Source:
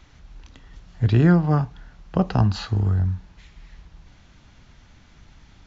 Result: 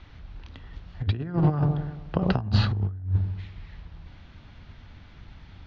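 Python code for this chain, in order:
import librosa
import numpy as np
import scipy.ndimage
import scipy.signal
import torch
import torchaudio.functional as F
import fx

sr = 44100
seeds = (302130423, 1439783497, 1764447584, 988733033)

p1 = np.sign(x) * np.maximum(np.abs(x) - 10.0 ** (-35.5 / 20.0), 0.0)
p2 = x + F.gain(torch.from_numpy(p1), -5.5).numpy()
p3 = scipy.signal.sosfilt(scipy.signal.butter(4, 4400.0, 'lowpass', fs=sr, output='sos'), p2)
p4 = fx.peak_eq(p3, sr, hz=88.0, db=8.0, octaves=0.47)
p5 = fx.echo_wet_lowpass(p4, sr, ms=94, feedback_pct=53, hz=720.0, wet_db=-11.0)
p6 = fx.over_compress(p5, sr, threshold_db=-18.0, ratio=-0.5)
y = F.gain(torch.from_numpy(p6), -4.5).numpy()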